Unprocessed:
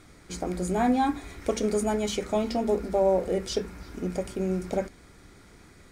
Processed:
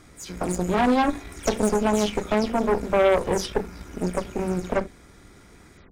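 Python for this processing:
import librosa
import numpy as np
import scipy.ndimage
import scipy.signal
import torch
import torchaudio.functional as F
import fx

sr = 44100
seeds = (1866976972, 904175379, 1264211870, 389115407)

y = fx.spec_delay(x, sr, highs='early', ms=139)
y = fx.notch(y, sr, hz=4400.0, q=15.0)
y = fx.cheby_harmonics(y, sr, harmonics=(6,), levels_db=(-13,), full_scale_db=-12.5)
y = y * 10.0 ** (2.5 / 20.0)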